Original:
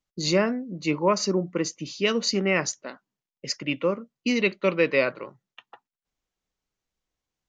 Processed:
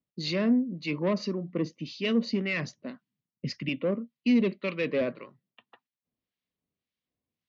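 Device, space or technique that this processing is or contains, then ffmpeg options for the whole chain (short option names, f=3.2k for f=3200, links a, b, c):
guitar amplifier with harmonic tremolo: -filter_complex "[0:a]acrossover=split=1100[a][b];[a]aeval=exprs='val(0)*(1-0.7/2+0.7/2*cos(2*PI*1.8*n/s))':c=same[c];[b]aeval=exprs='val(0)*(1-0.7/2-0.7/2*cos(2*PI*1.8*n/s))':c=same[d];[c][d]amix=inputs=2:normalize=0,asoftclip=type=tanh:threshold=-21.5dB,highpass=91,equalizer=f=94:t=q:w=4:g=7,equalizer=f=160:t=q:w=4:g=5,equalizer=f=240:t=q:w=4:g=8,equalizer=f=850:t=q:w=4:g=-8,equalizer=f=1.4k:t=q:w=4:g=-8,lowpass=f=4.4k:w=0.5412,lowpass=f=4.4k:w=1.3066,asettb=1/sr,asplit=3[e][f][g];[e]atrim=end=2.384[h];[f]atrim=start=2.38:end=3.69,asetpts=PTS-STARTPTS,afade=t=in:d=0.004:c=qsin,afade=t=out:st=1.306:d=0.004:c=qsin,asubboost=boost=11:cutoff=240[i];[g]atrim=start=3.686[j];[h][i]acrossfade=d=0.004:c1=hsin:c2=qsin[k];[k][j]acrossfade=d=0.004:c1=qsin:c2=hsin"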